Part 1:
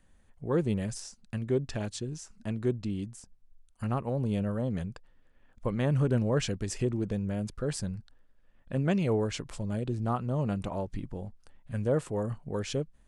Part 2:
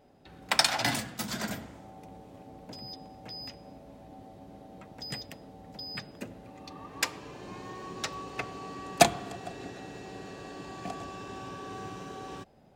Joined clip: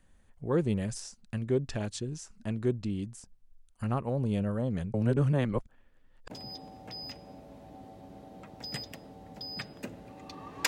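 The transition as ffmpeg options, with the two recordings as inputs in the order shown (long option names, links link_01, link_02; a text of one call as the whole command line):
ffmpeg -i cue0.wav -i cue1.wav -filter_complex "[0:a]apad=whole_dur=10.67,atrim=end=10.67,asplit=2[link_01][link_02];[link_01]atrim=end=4.942[link_03];[link_02]atrim=start=4.938:end=6.302,asetpts=PTS-STARTPTS,areverse[link_04];[1:a]atrim=start=2.678:end=7.05[link_05];[link_03][link_04]acrossfade=duration=0.004:curve1=hsin:curve2=hsin[link_06];[link_06][link_05]acrossfade=duration=0.004:curve1=hsin:curve2=hsin" out.wav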